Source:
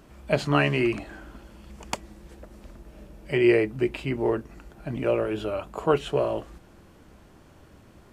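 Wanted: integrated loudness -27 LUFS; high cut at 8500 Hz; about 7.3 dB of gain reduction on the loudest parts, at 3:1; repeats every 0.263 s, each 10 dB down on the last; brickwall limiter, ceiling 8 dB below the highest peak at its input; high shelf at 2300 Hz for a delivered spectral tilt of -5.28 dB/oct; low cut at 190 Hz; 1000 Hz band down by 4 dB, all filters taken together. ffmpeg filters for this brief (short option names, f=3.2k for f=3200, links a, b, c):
-af "highpass=190,lowpass=8.5k,equalizer=f=1k:t=o:g=-4,highshelf=f=2.3k:g=-6.5,acompressor=threshold=-26dB:ratio=3,alimiter=limit=-23dB:level=0:latency=1,aecho=1:1:263|526|789|1052:0.316|0.101|0.0324|0.0104,volume=7.5dB"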